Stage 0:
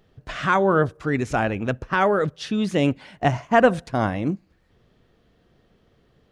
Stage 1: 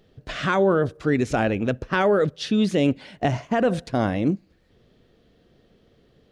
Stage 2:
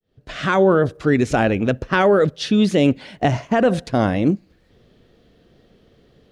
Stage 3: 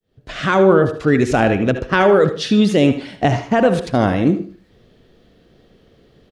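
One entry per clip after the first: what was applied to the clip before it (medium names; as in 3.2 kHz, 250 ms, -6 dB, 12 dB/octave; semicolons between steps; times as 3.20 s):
ten-band graphic EQ 250 Hz +3 dB, 500 Hz +4 dB, 1 kHz -4 dB, 4 kHz +4 dB; peak limiter -11 dBFS, peak gain reduction 10.5 dB
fade-in on the opening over 0.59 s; wow and flutter 27 cents; trim +4.5 dB
feedback delay 76 ms, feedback 32%, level -12.5 dB; reverberation RT60 0.30 s, pre-delay 59 ms, DRR 10 dB; trim +2 dB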